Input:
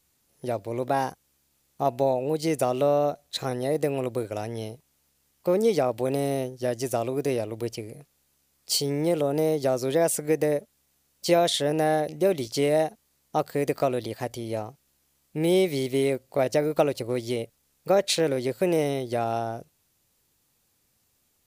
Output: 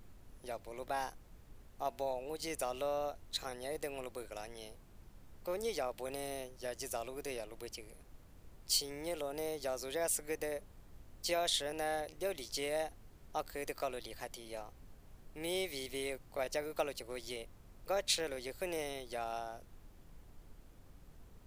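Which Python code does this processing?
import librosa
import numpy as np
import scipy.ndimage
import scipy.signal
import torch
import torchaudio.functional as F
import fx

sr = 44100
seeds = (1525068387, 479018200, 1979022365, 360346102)

y = fx.highpass(x, sr, hz=1300.0, slope=6)
y = fx.dmg_noise_colour(y, sr, seeds[0], colour='brown', level_db=-48.0)
y = F.gain(torch.from_numpy(y), -6.5).numpy()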